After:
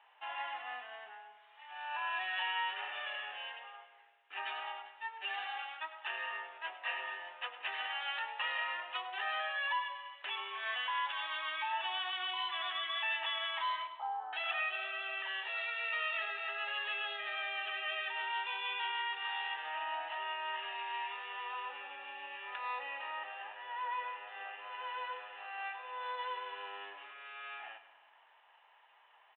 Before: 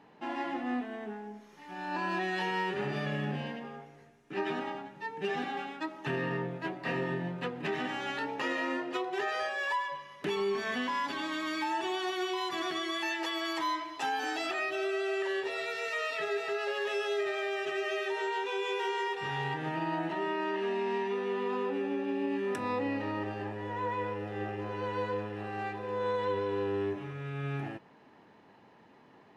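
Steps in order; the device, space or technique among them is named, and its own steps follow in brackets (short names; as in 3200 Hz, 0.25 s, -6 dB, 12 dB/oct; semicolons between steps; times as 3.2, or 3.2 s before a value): 13.87–14.33 steep low-pass 1200 Hz 48 dB/oct; bell 350 Hz -4.5 dB 0.82 oct; split-band echo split 860 Hz, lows 0.14 s, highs 0.102 s, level -13.5 dB; musical greeting card (downsampling 8000 Hz; HPF 750 Hz 24 dB/oct; bell 2900 Hz +6.5 dB 0.37 oct); gain -2.5 dB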